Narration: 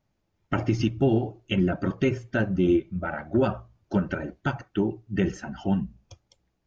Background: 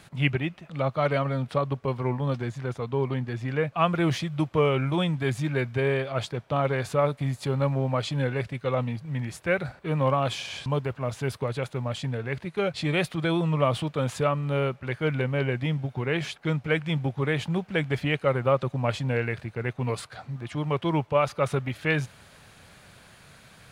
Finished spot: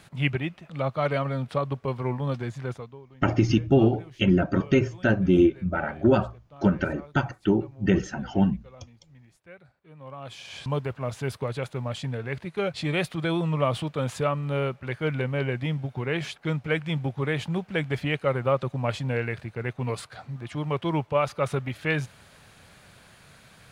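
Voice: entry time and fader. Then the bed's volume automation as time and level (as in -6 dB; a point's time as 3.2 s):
2.70 s, +3.0 dB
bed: 2.74 s -1 dB
3.03 s -23 dB
9.95 s -23 dB
10.64 s -1 dB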